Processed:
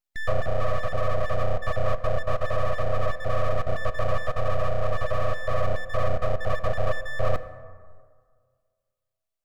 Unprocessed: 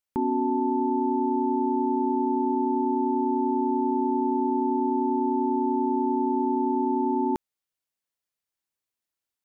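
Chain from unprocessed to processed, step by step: random holes in the spectrogram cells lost 31%; peaking EQ 160 Hz -15 dB 0.61 oct; gain riding 0.5 s; ten-band graphic EQ 125 Hz -10 dB, 250 Hz +9 dB, 500 Hz +3 dB; full-wave rectifier; reverberation RT60 1.8 s, pre-delay 3 ms, DRR 11.5 dB

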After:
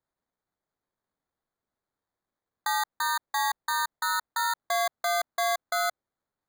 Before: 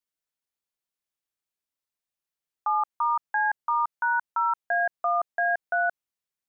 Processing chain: resonances exaggerated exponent 1.5; dynamic bell 1.3 kHz, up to -4 dB, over -35 dBFS, Q 1.1; sample-and-hold 16×

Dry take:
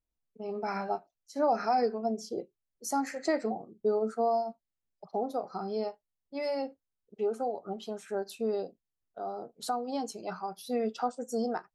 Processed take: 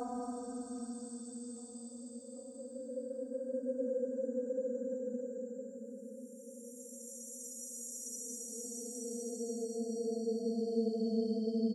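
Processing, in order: expander on every frequency bin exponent 2; treble shelf 10 kHz +5 dB; hum notches 60/120/180/240/300/360/420/480/540 Hz; reverse; compression 5:1, threshold -43 dBFS, peak gain reduction 16.5 dB; reverse; Paulstretch 40×, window 0.10 s, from 11.10 s; on a send: feedback delay 783 ms, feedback 55%, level -19 dB; on the sum: trim +10.5 dB

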